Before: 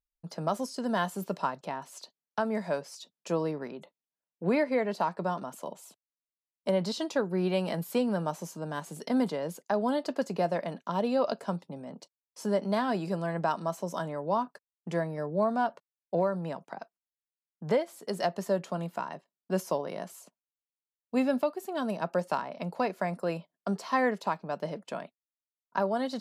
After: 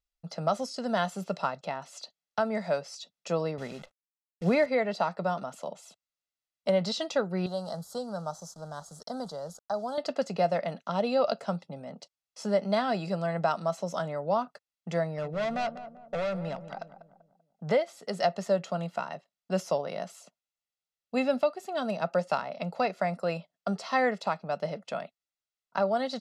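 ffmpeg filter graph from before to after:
ffmpeg -i in.wav -filter_complex "[0:a]asettb=1/sr,asplit=3[link_01][link_02][link_03];[link_01]atrim=end=3.584[link_04];[link_02]atrim=start=3.58:end=4.66,asetpts=PTS-STARTPTS,afade=type=in:duration=0.004:curve=qsin,afade=type=out:start_time=1.076:duration=0.004:curve=qsin,lowshelf=frequency=150:gain=11,acrusher=bits=9:dc=4:mix=0:aa=0.000001[link_05];[link_03]atrim=start=4.656[link_06];[link_04][link_05]acrossfade=duration=0.004:curve1=hsin:curve2=qsin[link_07];[link_07][link_06]acrossfade=duration=0.004:curve1=qsin:curve2=hsin,asettb=1/sr,asplit=3[link_08][link_09][link_10];[link_08]atrim=end=7.464[link_11];[link_09]atrim=start=7.46:end=9.98,asetpts=PTS-STARTPTS,afade=type=in:duration=0.004:curve=qsin,afade=type=out:start_time=2.516:duration=0.004:curve=qsin,equalizer=frequency=300:width=0.62:gain=-10.5,aeval=exprs='val(0)*gte(abs(val(0)),0.00299)':channel_layout=same,asuperstop=centerf=2400:order=4:qfactor=0.78[link_12];[link_10]atrim=start=9.976[link_13];[link_11][link_12]acrossfade=duration=0.004:curve1=hsin:curve2=qsin[link_14];[link_14][link_13]acrossfade=duration=0.004:curve1=qsin:curve2=hsin,asettb=1/sr,asplit=3[link_15][link_16][link_17];[link_15]atrim=end=15.054[link_18];[link_16]atrim=start=15.05:end=17.68,asetpts=PTS-STARTPTS,afade=type=in:duration=0.004:curve=qsin,afade=type=out:start_time=2.626:duration=0.004:curve=qsin,asoftclip=type=hard:threshold=-30dB,asplit=2[link_19][link_20];[link_20]adelay=194,lowpass=frequency=1000:poles=1,volume=-10.5dB,asplit=2[link_21][link_22];[link_22]adelay=194,lowpass=frequency=1000:poles=1,volume=0.45,asplit=2[link_23][link_24];[link_24]adelay=194,lowpass=frequency=1000:poles=1,volume=0.45,asplit=2[link_25][link_26];[link_26]adelay=194,lowpass=frequency=1000:poles=1,volume=0.45,asplit=2[link_27][link_28];[link_28]adelay=194,lowpass=frequency=1000:poles=1,volume=0.45[link_29];[link_19][link_21][link_23][link_25][link_27][link_29]amix=inputs=6:normalize=0,atrim=end_sample=115983[link_30];[link_17]atrim=start=17.676[link_31];[link_18][link_30]acrossfade=duration=0.004:curve1=hsin:curve2=qsin[link_32];[link_32][link_31]acrossfade=duration=0.004:curve1=qsin:curve2=hsin,lowpass=5200,highshelf=frequency=3400:gain=8,aecho=1:1:1.5:0.49" out.wav

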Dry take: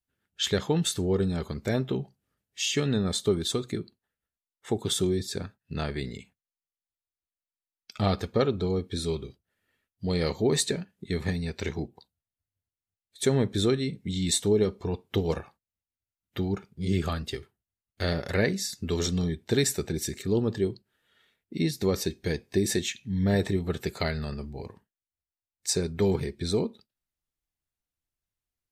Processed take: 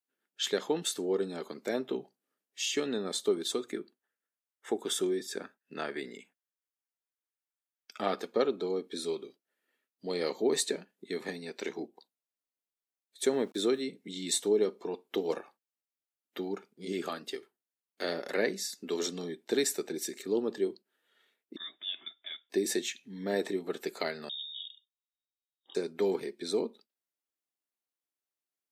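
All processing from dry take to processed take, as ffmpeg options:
ffmpeg -i in.wav -filter_complex "[0:a]asettb=1/sr,asplit=3[link_01][link_02][link_03];[link_01]atrim=end=3.614[link_04];[link_02]atrim=start=3.61:end=8.19,asetpts=PTS-STARTPTS,afade=type=in:duration=0.004:curve=qsin,afade=type=out:start_time=4.576:duration=0.004:curve=qsin,equalizer=frequency=1600:width=2.1:gain=5.5,bandreject=frequency=4200:width=6.2[link_05];[link_03]atrim=start=8.186[link_06];[link_04][link_05]acrossfade=duration=0.004:curve1=hsin:curve2=qsin[link_07];[link_07][link_06]acrossfade=duration=0.004:curve1=qsin:curve2=hsin,asettb=1/sr,asplit=3[link_08][link_09][link_10];[link_08]atrim=end=13.334[link_11];[link_09]atrim=start=13.33:end=13.82,asetpts=PTS-STARTPTS,afade=type=in:duration=0.004:curve=qsin,afade=type=out:start_time=0.486:duration=0.004:curve=qsin,agate=range=-33dB:threshold=-35dB:ratio=3:release=100:detection=peak,aeval=exprs='val(0)*gte(abs(val(0)),0.00299)':channel_layout=same[link_12];[link_10]atrim=start=13.816[link_13];[link_11][link_12]acrossfade=duration=0.004:curve1=hsin:curve2=qsin[link_14];[link_14][link_13]acrossfade=duration=0.004:curve1=qsin:curve2=hsin,asettb=1/sr,asplit=3[link_15][link_16][link_17];[link_15]atrim=end=21.564[link_18];[link_16]atrim=start=21.56:end=22.5,asetpts=PTS-STARTPTS,afade=type=in:duration=0.004:curve=qsin,afade=type=out:start_time=0.936:duration=0.004:curve=qsin,highpass=560,equalizer=frequency=2200:width=0.62:gain=-7,lowpass=frequency=3300:width_type=q:width=0.5098,lowpass=frequency=3300:width_type=q:width=0.6013,lowpass=frequency=3300:width_type=q:width=0.9,lowpass=frequency=3300:width_type=q:width=2.563,afreqshift=-3900[link_19];[link_17]atrim=start=22.496[link_20];[link_18][link_19]acrossfade=duration=0.004:curve1=hsin:curve2=qsin[link_21];[link_21][link_20]acrossfade=duration=0.004:curve1=qsin:curve2=hsin,asettb=1/sr,asplit=3[link_22][link_23][link_24];[link_22]atrim=end=24.294[link_25];[link_23]atrim=start=24.29:end=25.75,asetpts=PTS-STARTPTS,afade=type=in:duration=0.004:curve=qsin,afade=type=out:start_time=1.456:duration=0.004:curve=qsin,aeval=exprs='(mod(5.96*val(0)+1,2)-1)/5.96':channel_layout=same,asuperstop=centerf=2000:order=20:qfactor=0.63,lowpass=frequency=3200:width_type=q:width=0.5098,lowpass=frequency=3200:width_type=q:width=0.6013,lowpass=frequency=3200:width_type=q:width=0.9,lowpass=frequency=3200:width_type=q:width=2.563,afreqshift=-3800[link_26];[link_24]atrim=start=25.746[link_27];[link_25][link_26]acrossfade=duration=0.004:curve1=hsin:curve2=qsin[link_28];[link_28][link_27]acrossfade=duration=0.004:curve1=qsin:curve2=hsin,highpass=frequency=270:width=0.5412,highpass=frequency=270:width=1.3066,equalizer=frequency=3200:width=0.3:gain=-2.5,volume=-2dB" out.wav

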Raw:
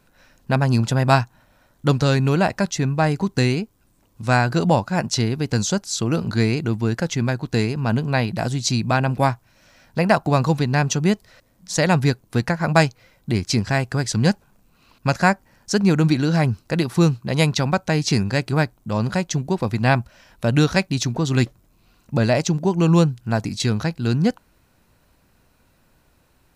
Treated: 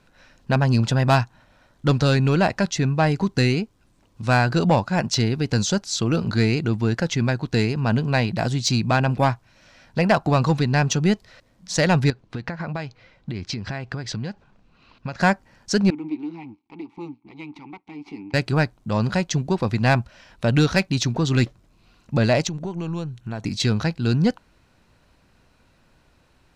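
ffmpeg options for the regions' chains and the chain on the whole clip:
ffmpeg -i in.wav -filter_complex "[0:a]asettb=1/sr,asplit=3[link_01][link_02][link_03];[link_01]atrim=end=12.104[link_04];[link_02]atrim=start=12.1:end=15.2,asetpts=PTS-STARTPTS,afade=type=in:duration=0.004:curve=qsin,afade=type=out:start_time=3.096:duration=0.004:curve=qsin,lowpass=4500,acompressor=threshold=-25dB:ratio=16:attack=3.2:release=140:knee=1:detection=peak[link_05];[link_03]atrim=start=15.196[link_06];[link_04][link_05]acrossfade=duration=0.004:curve1=hsin:curve2=qsin[link_07];[link_07][link_06]acrossfade=duration=0.004:curve1=qsin:curve2=hsin,asettb=1/sr,asplit=3[link_08][link_09][link_10];[link_08]atrim=end=15.904[link_11];[link_09]atrim=start=15.9:end=18.34,asetpts=PTS-STARTPTS,afade=type=in:duration=0.004:curve=qsin,afade=type=out:start_time=2.436:duration=0.004:curve=qsin,aeval=exprs='max(val(0),0)':channel_layout=same,asplit=3[link_12][link_13][link_14];[link_12]bandpass=frequency=300:width_type=q:width=8,volume=0dB[link_15];[link_13]bandpass=frequency=870:width_type=q:width=8,volume=-6dB[link_16];[link_14]bandpass=frequency=2240:width_type=q:width=8,volume=-9dB[link_17];[link_15][link_16][link_17]amix=inputs=3:normalize=0[link_18];[link_10]atrim=start=18.336[link_19];[link_11][link_18]acrossfade=duration=0.004:curve1=hsin:curve2=qsin[link_20];[link_20][link_19]acrossfade=duration=0.004:curve1=qsin:curve2=hsin,asettb=1/sr,asplit=3[link_21][link_22][link_23];[link_21]atrim=end=22.474[link_24];[link_22]atrim=start=22.47:end=23.46,asetpts=PTS-STARTPTS,afade=type=in:duration=0.004:curve=qsin,afade=type=out:start_time=0.986:duration=0.004:curve=qsin,acompressor=threshold=-26dB:ratio=4:attack=3.2:release=140:knee=1:detection=peak,aeval=exprs='(tanh(7.08*val(0)+0.4)-tanh(0.4))/7.08':channel_layout=same,asuperstop=centerf=4900:order=4:qfactor=6.4[link_25];[link_23]atrim=start=23.456[link_26];[link_24][link_25]acrossfade=duration=0.004:curve1=hsin:curve2=qsin[link_27];[link_27][link_26]acrossfade=duration=0.004:curve1=qsin:curve2=hsin,lowpass=4100,aemphasis=mode=production:type=50kf,acontrast=85,volume=-6.5dB" out.wav

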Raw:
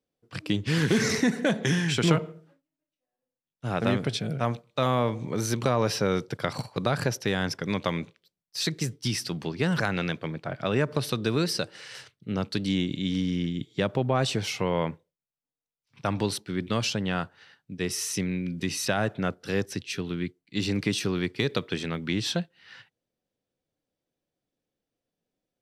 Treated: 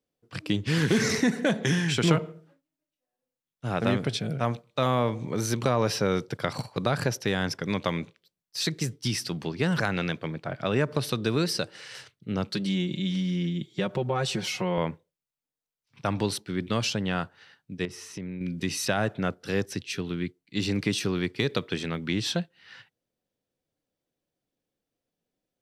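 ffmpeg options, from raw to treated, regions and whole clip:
ffmpeg -i in.wav -filter_complex "[0:a]asettb=1/sr,asplit=3[link_01][link_02][link_03];[link_01]atrim=end=12.484[link_04];[link_02]atrim=start=12.48:end=14.78,asetpts=PTS-STARTPTS,afade=type=in:duration=0.004:curve=qsin,afade=type=out:start_time=2.296:duration=0.004:curve=qsin,highpass=60,aecho=1:1:5.5:0.83,atrim=end_sample=101430,acompressor=threshold=-30dB:ratio=1.5:attack=3.2:release=140:knee=1:detection=peak[link_05];[link_03]atrim=start=14.776[link_06];[link_04][link_05]acrossfade=duration=0.004:curve1=hsin:curve2=qsin[link_07];[link_07][link_06]acrossfade=duration=0.004:curve1=qsin:curve2=hsin,asettb=1/sr,asplit=3[link_08][link_09][link_10];[link_08]atrim=end=17.854[link_11];[link_09]atrim=start=17.85:end=18.41,asetpts=PTS-STARTPTS,afade=type=in:duration=0.004:curve=qsin,afade=type=out:start_time=0.556:duration=0.004:curve=qsin,lowpass=frequency=1400:poles=1,acompressor=threshold=-35dB:ratio=2.5:attack=3.2:release=140:knee=1:detection=peak[link_12];[link_10]atrim=start=18.406[link_13];[link_11][link_12]acrossfade=duration=0.004:curve1=hsin:curve2=qsin[link_14];[link_14][link_13]acrossfade=duration=0.004:curve1=qsin:curve2=hsin" out.wav

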